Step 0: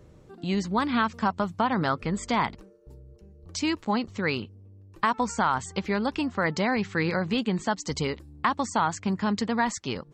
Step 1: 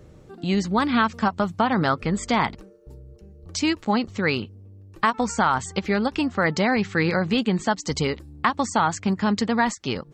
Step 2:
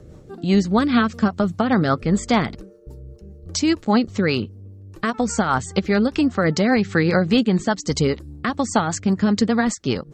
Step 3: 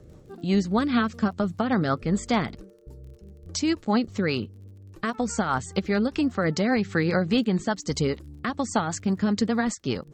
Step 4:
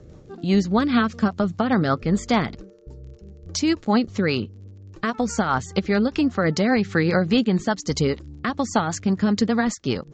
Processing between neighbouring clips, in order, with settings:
notch 1000 Hz, Q 14; ending taper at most 500 dB/s; gain +4.5 dB
bell 2500 Hz -4.5 dB 1.2 oct; rotary speaker horn 5 Hz; dynamic EQ 950 Hz, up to -6 dB, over -44 dBFS, Q 4; gain +6.5 dB
crackle 31/s -41 dBFS; gain -5.5 dB
downsampling 16000 Hz; gain +3.5 dB

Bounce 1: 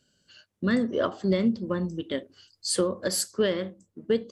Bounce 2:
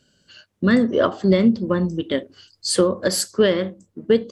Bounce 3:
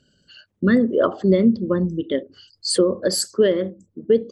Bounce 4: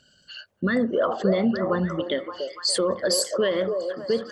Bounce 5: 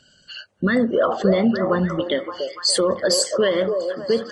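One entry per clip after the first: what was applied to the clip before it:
high shelf 6800 Hz -6 dB; gain +8 dB
formant sharpening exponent 1.5
resonant low shelf 550 Hz -8.5 dB, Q 1.5; limiter -20 dBFS, peak gain reduction 11.5 dB; delay with a stepping band-pass 0.287 s, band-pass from 550 Hz, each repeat 0.7 oct, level -3 dB; gain +5.5 dB
gain +4 dB; Vorbis 32 kbps 22050 Hz

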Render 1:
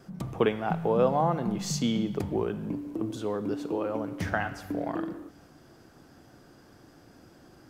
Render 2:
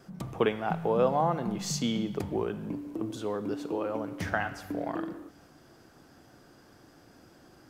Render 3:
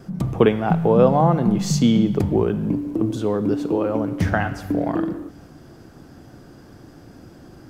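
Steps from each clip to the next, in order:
low shelf 400 Hz -3.5 dB
low shelf 380 Hz +11.5 dB; gain +5.5 dB

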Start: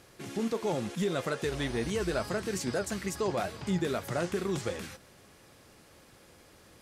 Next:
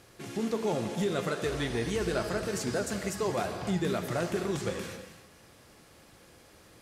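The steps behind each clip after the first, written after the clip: non-linear reverb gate 0.34 s flat, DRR 6.5 dB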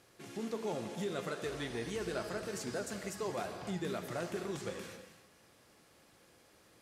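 low shelf 97 Hz -9.5 dB; gain -7 dB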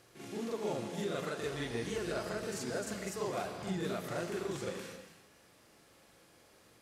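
reverse echo 43 ms -4 dB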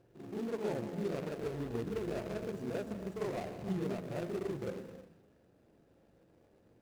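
median filter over 41 samples; gain +1.5 dB

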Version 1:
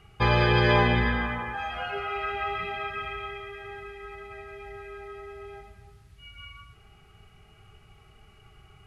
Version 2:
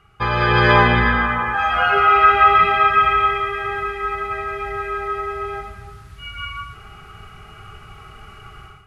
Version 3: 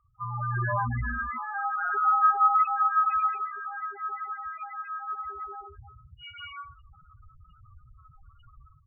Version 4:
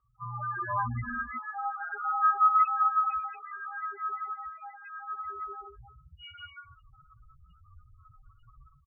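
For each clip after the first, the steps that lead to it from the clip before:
AGC gain up to 15 dB; bell 1300 Hz +10.5 dB 0.67 oct; gain -2.5 dB
notches 50/100/150/200/250/300/350/400 Hz; loudest bins only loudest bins 4; gain -8 dB
endless flanger 4.9 ms +0.71 Hz

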